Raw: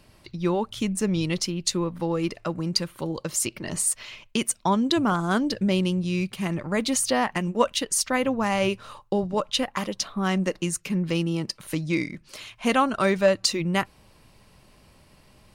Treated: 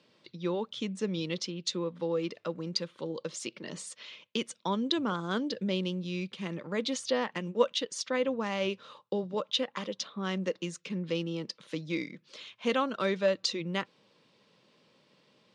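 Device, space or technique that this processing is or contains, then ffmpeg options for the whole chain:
television speaker: -af "highpass=frequency=160:width=0.5412,highpass=frequency=160:width=1.3066,equalizer=frequency=490:width_type=q:width=4:gain=8,equalizer=frequency=720:width_type=q:width=4:gain=-6,equalizer=frequency=3500:width_type=q:width=4:gain=8,lowpass=frequency=6500:width=0.5412,lowpass=frequency=6500:width=1.3066,volume=-8.5dB"

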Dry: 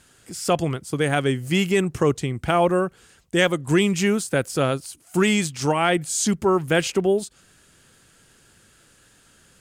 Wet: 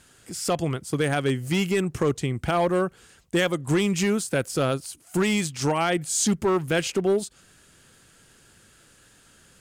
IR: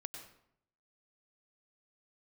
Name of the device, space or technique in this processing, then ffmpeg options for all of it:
limiter into clipper: -af "alimiter=limit=-12.5dB:level=0:latency=1:release=282,asoftclip=type=hard:threshold=-16dB"

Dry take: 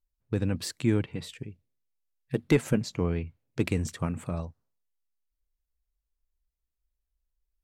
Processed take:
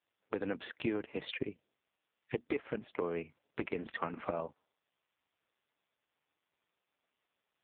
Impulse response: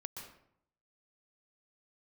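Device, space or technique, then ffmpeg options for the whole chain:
voicemail: -af "highpass=420,lowpass=3000,acompressor=threshold=-45dB:ratio=10,volume=14.5dB" -ar 8000 -c:a libopencore_amrnb -b:a 4750

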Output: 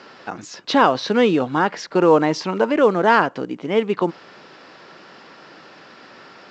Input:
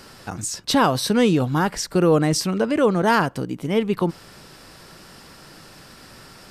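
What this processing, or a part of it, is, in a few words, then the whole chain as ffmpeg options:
telephone: -filter_complex "[0:a]asettb=1/sr,asplit=3[link_01][link_02][link_03];[link_01]atrim=end=1.964[link_04];[link_02]atrim=start=1.96:end=2.75,asetpts=PTS-STARTPTS,afade=type=in:duration=0.004:curve=qsin,afade=type=out:start_time=0.786:duration=0.004:curve=qsin,equalizer=frequency=930:width=7.7:gain=11[link_05];[link_03]atrim=start=2.746[link_06];[link_04][link_05]acrossfade=duration=0.004:curve1=hsin:curve2=qsin[link_07];[link_07][link_06]acrossfade=duration=0.004:curve1=qsin:curve2=hsin,highpass=290,lowpass=3200,volume=4dB" -ar 16000 -c:a pcm_alaw

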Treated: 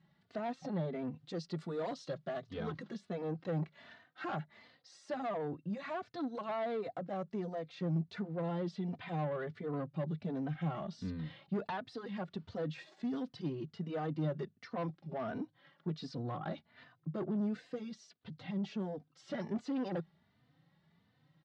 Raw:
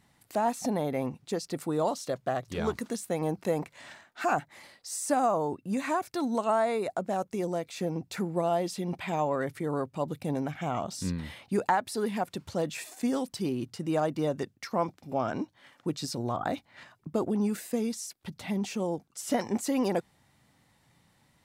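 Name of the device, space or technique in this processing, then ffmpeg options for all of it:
barber-pole flanger into a guitar amplifier: -filter_complex "[0:a]asplit=2[link_01][link_02];[link_02]adelay=3.2,afreqshift=1.4[link_03];[link_01][link_03]amix=inputs=2:normalize=1,asoftclip=type=tanh:threshold=-28dB,highpass=90,equalizer=frequency=160:width_type=q:width=4:gain=10,equalizer=frequency=910:width_type=q:width=4:gain=-5,equalizer=frequency=2400:width_type=q:width=4:gain=-6,lowpass=frequency=4100:width=0.5412,lowpass=frequency=4100:width=1.3066,asettb=1/sr,asplit=3[link_04][link_05][link_06];[link_04]atrim=end=1.184[link_07];[link_05]atrim=start=1.18:end=2.5,asetpts=PTS-STARTPTS,afade=type=in:duration=0.004:curve=qsin,afade=type=out:start_time=1.316:duration=0.004:curve=qsin,aemphasis=mode=production:type=50fm[link_08];[link_06]atrim=start=2.496[link_09];[link_07][link_08]acrossfade=duration=0.004:curve1=hsin:curve2=qsin[link_10];[link_10][link_09]acrossfade=duration=0.004:curve1=qsin:curve2=hsin,volume=-3.5dB"

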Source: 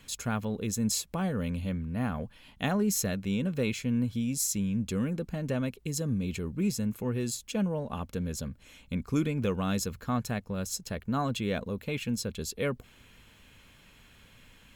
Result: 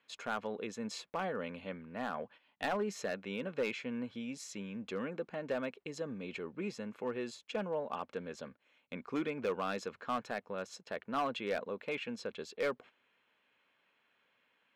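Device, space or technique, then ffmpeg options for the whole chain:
walkie-talkie: -af "highpass=460,lowpass=2500,asoftclip=type=hard:threshold=-28.5dB,agate=range=-13dB:threshold=-55dB:ratio=16:detection=peak,volume=1dB"

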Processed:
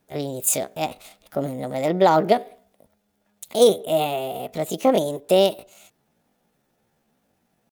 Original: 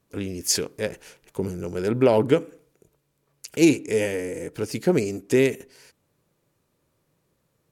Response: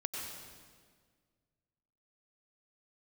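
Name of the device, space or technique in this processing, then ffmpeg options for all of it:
chipmunk voice: -filter_complex "[0:a]asetrate=64194,aresample=44100,atempo=0.686977,asettb=1/sr,asplit=3[link_01][link_02][link_03];[link_01]atrim=end=3.674[link_04];[link_02]atrim=start=3.67:end=4.21,asetpts=PTS-STARTPTS,afade=type=in:duration=0.004:curve=qsin,afade=type=out:start_time=0.536:duration=0.004:curve=qsin,equalizer=frequency=4900:width=3.7:gain=-13.5[link_05];[link_03]atrim=start=4.206[link_06];[link_04][link_05]acrossfade=duration=0.004:curve1=hsin:curve2=qsin[link_07];[link_07][link_06]acrossfade=duration=0.004:curve1=qsin:curve2=hsin,volume=2dB"

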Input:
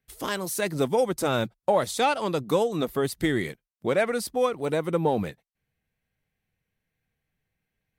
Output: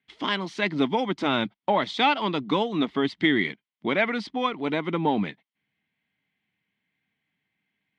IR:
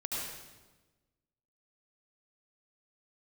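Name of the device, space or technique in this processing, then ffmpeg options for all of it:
kitchen radio: -af "highpass=170,equalizer=frequency=200:width_type=q:width=4:gain=5,equalizer=frequency=280:width_type=q:width=4:gain=7,equalizer=frequency=510:width_type=q:width=4:gain=-9,equalizer=frequency=970:width_type=q:width=4:gain=5,equalizer=frequency=2100:width_type=q:width=4:gain=9,equalizer=frequency=3200:width_type=q:width=4:gain=9,lowpass=frequency=4500:width=0.5412,lowpass=frequency=4500:width=1.3066"

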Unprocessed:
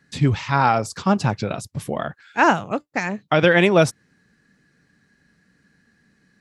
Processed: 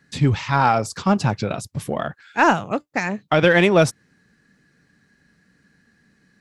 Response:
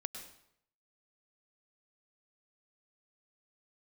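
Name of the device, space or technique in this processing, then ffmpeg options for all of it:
parallel distortion: -filter_complex "[0:a]asplit=2[link_01][link_02];[link_02]asoftclip=type=hard:threshold=-17dB,volume=-11dB[link_03];[link_01][link_03]amix=inputs=2:normalize=0,volume=-1dB"

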